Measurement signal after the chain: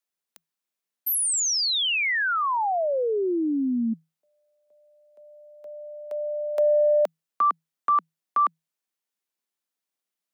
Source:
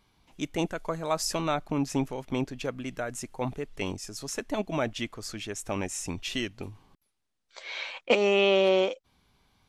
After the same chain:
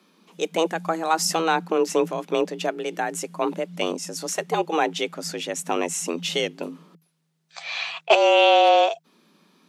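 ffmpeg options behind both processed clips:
ffmpeg -i in.wav -af "afreqshift=160,acontrast=77" out.wav

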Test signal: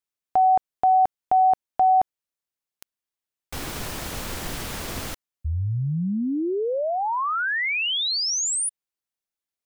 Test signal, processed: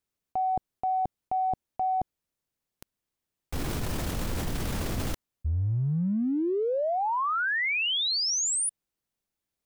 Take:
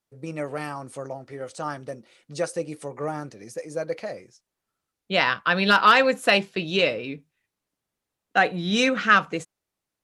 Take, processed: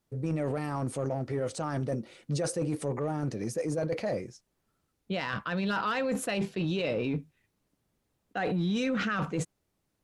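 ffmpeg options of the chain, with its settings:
ffmpeg -i in.wav -af "lowshelf=frequency=450:gain=11.5,areverse,acompressor=threshold=-27dB:ratio=12:attack=0.43:release=36:knee=1:detection=rms,areverse,volume=2dB" out.wav

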